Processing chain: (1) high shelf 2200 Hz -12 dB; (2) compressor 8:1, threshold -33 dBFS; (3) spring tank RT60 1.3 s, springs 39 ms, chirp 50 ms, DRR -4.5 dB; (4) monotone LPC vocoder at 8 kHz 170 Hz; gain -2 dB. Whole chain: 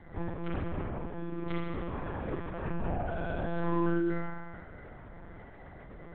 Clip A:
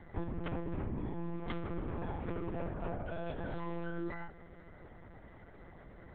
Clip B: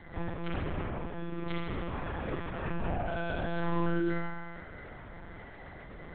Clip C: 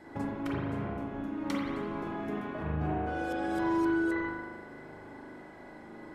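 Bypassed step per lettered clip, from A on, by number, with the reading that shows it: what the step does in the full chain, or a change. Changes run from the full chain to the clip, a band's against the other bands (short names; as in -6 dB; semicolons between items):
3, momentary loudness spread change -4 LU; 1, 2 kHz band +3.5 dB; 4, 125 Hz band -5.0 dB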